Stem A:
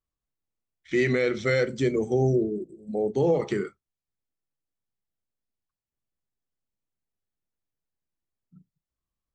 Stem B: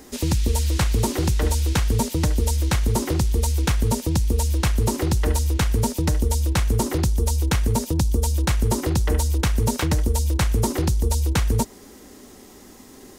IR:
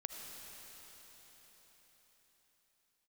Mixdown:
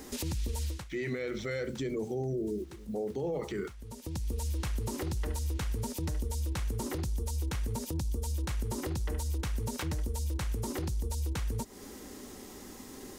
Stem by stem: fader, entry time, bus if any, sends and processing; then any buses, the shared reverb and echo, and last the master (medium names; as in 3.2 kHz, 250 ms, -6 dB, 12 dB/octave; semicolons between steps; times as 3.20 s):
-3.5 dB, 0.00 s, no send, bit crusher 10-bit; gate with hold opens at -39 dBFS
-1.5 dB, 0.00 s, no send, band-stop 670 Hz, Q 12; compression 6:1, threshold -27 dBFS, peak gain reduction 11 dB; auto duck -19 dB, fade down 0.25 s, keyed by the first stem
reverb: none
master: peak limiter -26.5 dBFS, peak gain reduction 10 dB